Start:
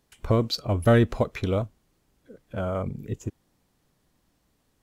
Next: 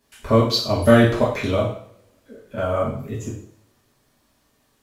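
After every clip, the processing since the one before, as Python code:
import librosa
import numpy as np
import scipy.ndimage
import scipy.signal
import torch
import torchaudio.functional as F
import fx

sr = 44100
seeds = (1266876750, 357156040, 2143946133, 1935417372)

y = fx.low_shelf(x, sr, hz=250.0, db=-7.5)
y = fx.rev_double_slope(y, sr, seeds[0], early_s=0.54, late_s=1.7, knee_db=-28, drr_db=-8.0)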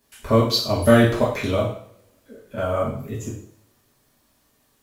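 y = fx.high_shelf(x, sr, hz=10000.0, db=8.5)
y = y * 10.0 ** (-1.0 / 20.0)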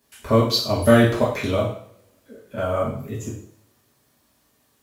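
y = scipy.signal.sosfilt(scipy.signal.butter(2, 52.0, 'highpass', fs=sr, output='sos'), x)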